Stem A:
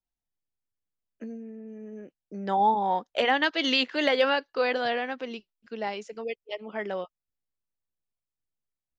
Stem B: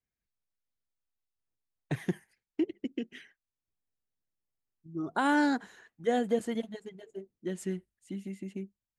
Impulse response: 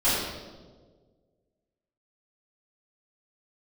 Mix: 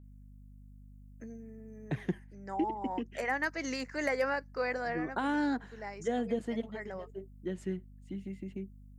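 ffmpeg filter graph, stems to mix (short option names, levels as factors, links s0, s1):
-filter_complex "[0:a]highshelf=f=2600:t=q:w=3:g=-7.5,aexciter=amount=14.4:drive=8.5:freq=5300,adynamicequalizer=threshold=0.0158:dfrequency=1600:dqfactor=0.7:tfrequency=1600:tqfactor=0.7:attack=5:release=100:ratio=0.375:range=2.5:mode=cutabove:tftype=highshelf,volume=0.398[s0];[1:a]highshelf=f=7300:g=-11.5,acrossover=split=250|3000[s1][s2][s3];[s2]acompressor=threshold=0.0398:ratio=6[s4];[s1][s4][s3]amix=inputs=3:normalize=0,aeval=exprs='val(0)+0.00316*(sin(2*PI*50*n/s)+sin(2*PI*2*50*n/s)/2+sin(2*PI*3*50*n/s)/3+sin(2*PI*4*50*n/s)/4+sin(2*PI*5*50*n/s)/5)':c=same,volume=0.841,asplit=2[s5][s6];[s6]apad=whole_len=396094[s7];[s0][s7]sidechaincompress=threshold=0.0224:ratio=8:attack=7:release=1280[s8];[s8][s5]amix=inputs=2:normalize=0,highshelf=f=5100:g=-5.5"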